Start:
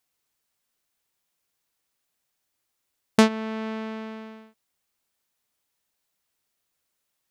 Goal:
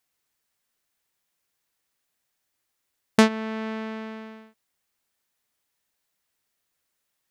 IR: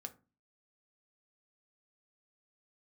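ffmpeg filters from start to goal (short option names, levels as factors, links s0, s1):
-af "equalizer=f=1800:w=2.8:g=3"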